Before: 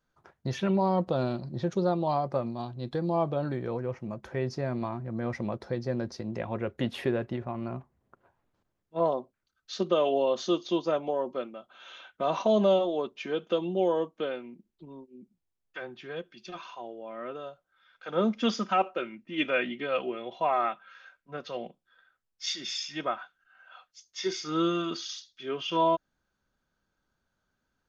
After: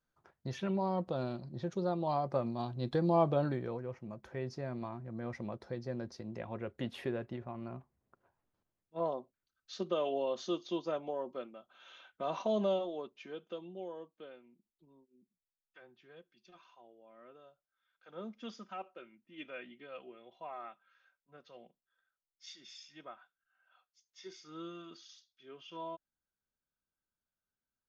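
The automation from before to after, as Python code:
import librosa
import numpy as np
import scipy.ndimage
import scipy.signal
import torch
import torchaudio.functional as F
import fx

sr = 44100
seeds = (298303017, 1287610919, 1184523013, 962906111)

y = fx.gain(x, sr, db=fx.line((1.78, -8.0), (2.79, -0.5), (3.4, -0.5), (3.82, -8.5), (12.65, -8.5), (13.92, -18.5)))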